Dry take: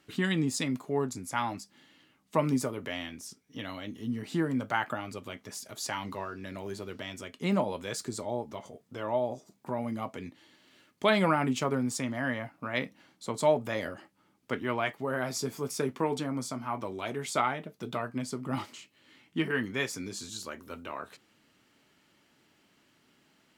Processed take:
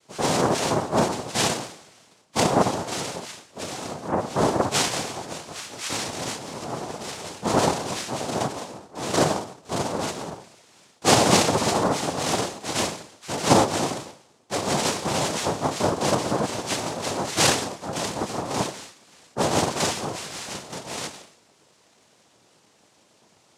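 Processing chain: two-slope reverb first 0.58 s, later 1.7 s, from -27 dB, DRR -6.5 dB; noise-vocoded speech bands 2

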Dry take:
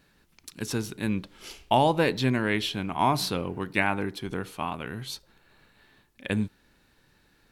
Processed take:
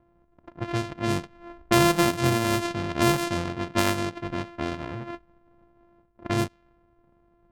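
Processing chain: sorted samples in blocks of 128 samples; level-controlled noise filter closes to 1 kHz, open at -21 dBFS; trim +2 dB

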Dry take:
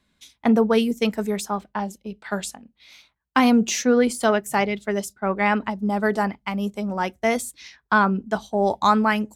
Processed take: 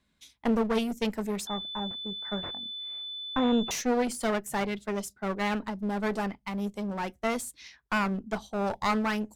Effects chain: bass shelf 120 Hz +2.5 dB; one-sided clip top -27.5 dBFS; 1.47–3.71 s: class-D stage that switches slowly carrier 3.5 kHz; trim -5.5 dB

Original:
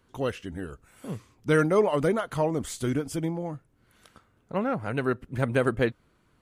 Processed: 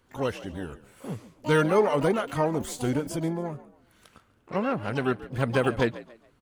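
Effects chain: harmony voices +12 st -11 dB; frequency-shifting echo 140 ms, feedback 31%, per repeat +55 Hz, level -17 dB

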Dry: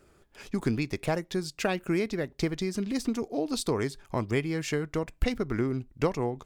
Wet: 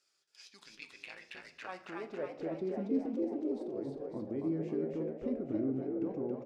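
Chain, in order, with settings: 3.05–4.06 s: compressor with a negative ratio -36 dBFS, ratio -1; peak limiter -22.5 dBFS, peak gain reduction 11.5 dB; band-pass sweep 5.1 kHz -> 290 Hz, 0.40–2.86 s; 0.63–1.69 s: AM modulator 110 Hz, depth 90%; frequency-shifting echo 275 ms, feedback 52%, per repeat +71 Hz, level -3 dB; on a send at -8 dB: reverberation RT60 0.70 s, pre-delay 4 ms

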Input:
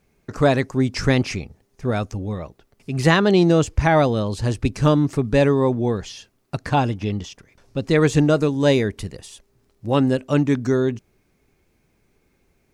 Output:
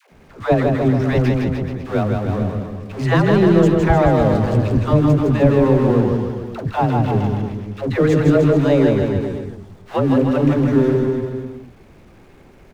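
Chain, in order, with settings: jump at every zero crossing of -22 dBFS; low-pass 1.2 kHz 6 dB/octave; in parallel at -0.5 dB: compression, threshold -23 dBFS, peak gain reduction 12.5 dB; on the sum: gate -18 dBFS, range -22 dB; phase dispersion lows, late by 122 ms, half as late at 480 Hz; on a send: bouncing-ball echo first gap 160 ms, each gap 0.9×, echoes 5; on the sum: trim -2 dB

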